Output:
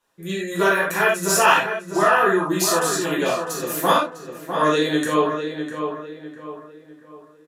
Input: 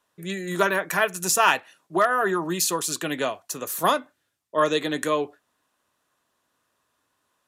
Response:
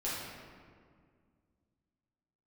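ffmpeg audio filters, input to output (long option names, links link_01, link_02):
-filter_complex "[0:a]asplit=2[link_01][link_02];[link_02]adelay=652,lowpass=frequency=2400:poles=1,volume=-7dB,asplit=2[link_03][link_04];[link_04]adelay=652,lowpass=frequency=2400:poles=1,volume=0.39,asplit=2[link_05][link_06];[link_06]adelay=652,lowpass=frequency=2400:poles=1,volume=0.39,asplit=2[link_07][link_08];[link_08]adelay=652,lowpass=frequency=2400:poles=1,volume=0.39,asplit=2[link_09][link_10];[link_10]adelay=652,lowpass=frequency=2400:poles=1,volume=0.39[link_11];[link_01][link_03][link_05][link_07][link_09][link_11]amix=inputs=6:normalize=0[link_12];[1:a]atrim=start_sample=2205,afade=type=out:start_time=0.15:duration=0.01,atrim=end_sample=7056[link_13];[link_12][link_13]afir=irnorm=-1:irlink=0,volume=1dB"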